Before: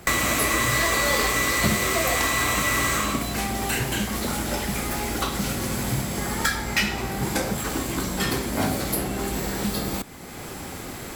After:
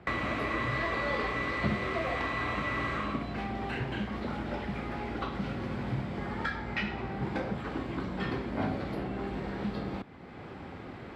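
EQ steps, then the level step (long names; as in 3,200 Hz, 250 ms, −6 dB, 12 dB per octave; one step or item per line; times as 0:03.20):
high-pass filter 59 Hz
low-pass filter 9,100 Hz 12 dB per octave
high-frequency loss of the air 380 metres
−6.0 dB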